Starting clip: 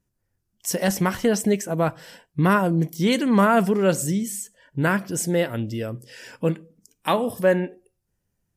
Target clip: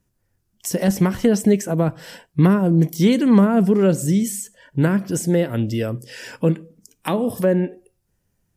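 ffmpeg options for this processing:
ffmpeg -i in.wav -filter_complex "[0:a]acrossover=split=450[link_01][link_02];[link_02]acompressor=threshold=-31dB:ratio=10[link_03];[link_01][link_03]amix=inputs=2:normalize=0,volume=6dB" out.wav

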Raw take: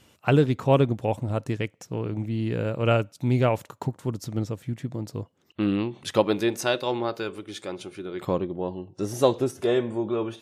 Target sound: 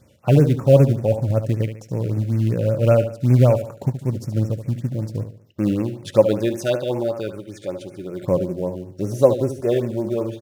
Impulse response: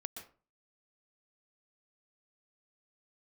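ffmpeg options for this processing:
-filter_complex "[0:a]equalizer=frequency=110:width=0.46:gain=11,aecho=1:1:73|146|219|292:0.316|0.117|0.0433|0.016,asplit=2[link_01][link_02];[link_02]acrusher=bits=4:mode=log:mix=0:aa=0.000001,volume=-4.5dB[link_03];[link_01][link_03]amix=inputs=2:normalize=0,equalizer=frequency=560:width=5:gain=11,afftfilt=real='re*(1-between(b*sr/1024,910*pow(3900/910,0.5+0.5*sin(2*PI*5.2*pts/sr))/1.41,910*pow(3900/910,0.5+0.5*sin(2*PI*5.2*pts/sr))*1.41))':imag='im*(1-between(b*sr/1024,910*pow(3900/910,0.5+0.5*sin(2*PI*5.2*pts/sr))/1.41,910*pow(3900/910,0.5+0.5*sin(2*PI*5.2*pts/sr))*1.41))':win_size=1024:overlap=0.75,volume=-7dB"

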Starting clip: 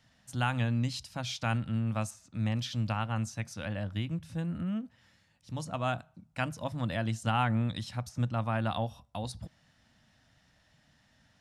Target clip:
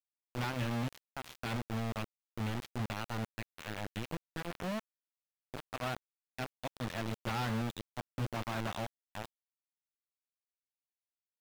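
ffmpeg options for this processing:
ffmpeg -i in.wav -filter_complex "[0:a]acrusher=bits=4:mix=0:aa=0.000001,aeval=exprs='0.0596*(abs(mod(val(0)/0.0596+3,4)-2)-1)':channel_layout=same,acrossover=split=4200[link_01][link_02];[link_02]acompressor=threshold=-45dB:ratio=4:attack=1:release=60[link_03];[link_01][link_03]amix=inputs=2:normalize=0,volume=-4.5dB" out.wav

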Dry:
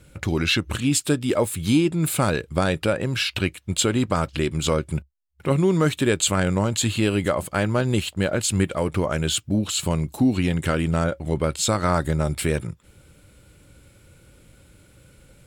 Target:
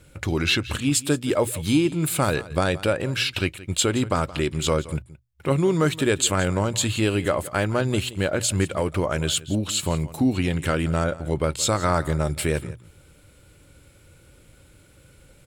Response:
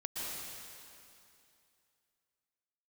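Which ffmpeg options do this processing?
-filter_complex "[0:a]equalizer=frequency=200:width=2.6:gain=-4.5,bandreject=frequency=60:width_type=h:width=6,bandreject=frequency=120:width_type=h:width=6,asplit=2[link_01][link_02];[link_02]aecho=0:1:172:0.126[link_03];[link_01][link_03]amix=inputs=2:normalize=0"

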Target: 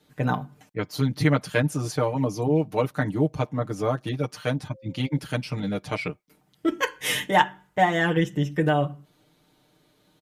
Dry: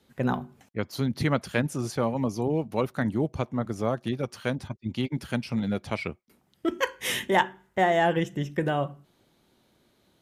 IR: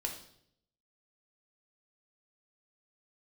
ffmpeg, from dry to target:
-filter_complex "[0:a]aecho=1:1:6.6:0.96,asettb=1/sr,asplit=3[link_01][link_02][link_03];[link_01]atrim=end=4.744[link_04];[link_02]atrim=start=4.74:end=5.19,asetpts=PTS-STARTPTS,afade=type=in:duration=0.004:curve=qsin,afade=type=out:start_time=0.446:duration=0.004:curve=qsin,aeval=exprs='val(0)+0.00398*sin(2*PI*530*n/s)':channel_layout=same[link_05];[link_03]atrim=start=5.186[link_06];[link_04][link_05]acrossfade=duration=0.004:curve1=hsin:curve2=qsin[link_07];[link_07][link_06]acrossfade=duration=0.004:curve1=qsin:curve2=hsin"

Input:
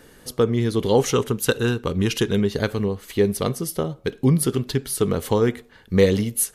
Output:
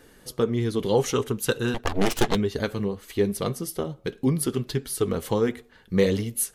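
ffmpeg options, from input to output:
ffmpeg -i in.wav -filter_complex "[0:a]asettb=1/sr,asplit=3[link_01][link_02][link_03];[link_01]atrim=end=1.744[link_04];[link_02]atrim=start=1.74:end=2.35,asetpts=PTS-STARTPTS,afade=type=in:duration=0.004:curve=qsin,afade=type=out:start_time=0.606:duration=0.004:curve=qsin,aeval=exprs='0.355*(cos(1*acos(clip(val(0)/0.355,-1,1)))-cos(1*PI/2))+0.126*(cos(6*acos(clip(val(0)/0.355,-1,1)))-cos(6*PI/2))+0.0891*(cos(7*acos(clip(val(0)/0.355,-1,1)))-cos(7*PI/2))':channel_layout=same[link_05];[link_03]atrim=start=2.346[link_06];[link_04][link_05]acrossfade=duration=0.004:curve1=hsin:curve2=qsin[link_07];[link_07][link_06]acrossfade=duration=0.004:curve1=qsin:curve2=hsin,flanger=delay=2.5:depth=3.5:regen=-52:speed=1.6:shape=sinusoidal" out.wav

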